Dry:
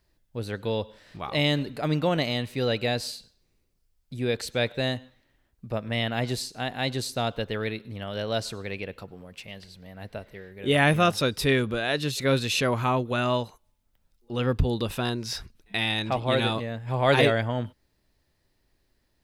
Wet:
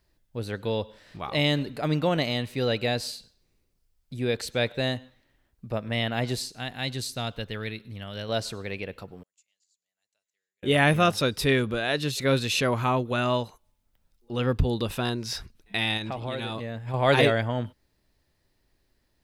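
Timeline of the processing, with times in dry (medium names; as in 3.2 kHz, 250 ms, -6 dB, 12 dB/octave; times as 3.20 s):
6.53–8.29 s: peaking EQ 570 Hz -7 dB 2.7 oct
9.23–10.63 s: band-pass filter 7 kHz, Q 20
15.97–16.94 s: compression 4:1, threshold -29 dBFS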